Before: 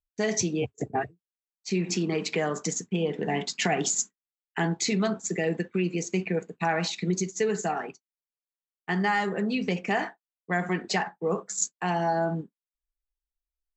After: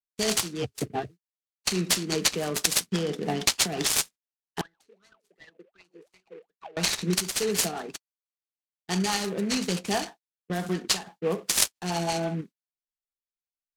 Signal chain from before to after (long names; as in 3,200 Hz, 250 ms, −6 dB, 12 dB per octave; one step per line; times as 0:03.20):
noise gate −43 dBFS, range −23 dB
high shelf with overshoot 3,100 Hz +13 dB, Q 3
downward compressor 12 to 1, threshold −19 dBFS, peak gain reduction 14.5 dB
rotating-speaker cabinet horn 6 Hz
0:04.61–0:06.77: LFO wah 2.7 Hz 400–2,100 Hz, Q 22
short delay modulated by noise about 1,700 Hz, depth 0.039 ms
level +1.5 dB